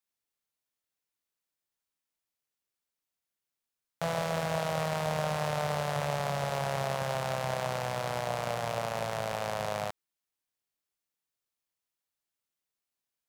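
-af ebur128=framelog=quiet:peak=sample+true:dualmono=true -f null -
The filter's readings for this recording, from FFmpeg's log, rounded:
Integrated loudness:
  I:         -29.5 LUFS
  Threshold: -39.6 LUFS
Loudness range:
  LRA:         9.0 LU
  Threshold: -51.1 LUFS
  LRA low:   -37.7 LUFS
  LRA high:  -28.7 LUFS
Sample peak:
  Peak:      -15.7 dBFS
True peak:
  Peak:      -15.4 dBFS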